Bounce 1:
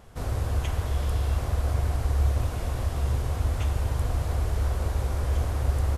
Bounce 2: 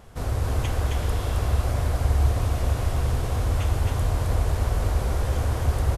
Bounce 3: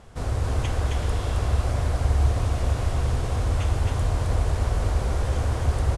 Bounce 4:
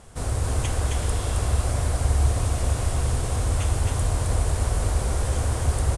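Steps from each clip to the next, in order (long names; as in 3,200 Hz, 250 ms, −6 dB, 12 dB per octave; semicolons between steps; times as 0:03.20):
single-tap delay 267 ms −3 dB; level +2.5 dB
low-pass filter 10,000 Hz 24 dB per octave
parametric band 9,200 Hz +13 dB 0.9 octaves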